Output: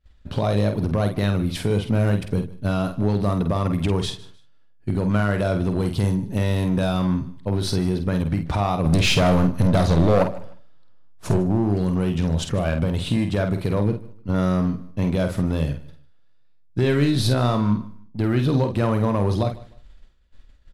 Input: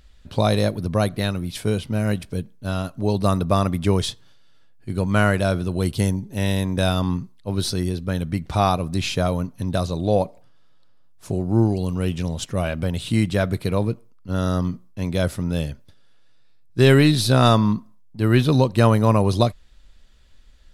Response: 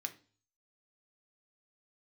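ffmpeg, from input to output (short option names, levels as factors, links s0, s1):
-filter_complex "[0:a]agate=range=0.0224:threshold=0.00891:ratio=3:detection=peak,highshelf=f=3400:g=-10,acompressor=threshold=0.0708:ratio=3,alimiter=limit=0.126:level=0:latency=1:release=70,asplit=3[s0][s1][s2];[s0]afade=t=out:st=8.84:d=0.02[s3];[s1]acontrast=90,afade=t=in:st=8.84:d=0.02,afade=t=out:st=11.36:d=0.02[s4];[s2]afade=t=in:st=11.36:d=0.02[s5];[s3][s4][s5]amix=inputs=3:normalize=0,asoftclip=type=hard:threshold=0.1,asplit=2[s6][s7];[s7]adelay=49,volume=0.447[s8];[s6][s8]amix=inputs=2:normalize=0,aecho=1:1:152|304:0.1|0.026,volume=2.11"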